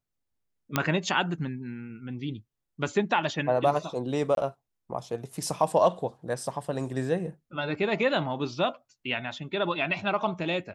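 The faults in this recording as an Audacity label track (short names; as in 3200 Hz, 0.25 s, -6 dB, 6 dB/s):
0.760000	0.760000	pop -8 dBFS
4.350000	4.370000	gap 22 ms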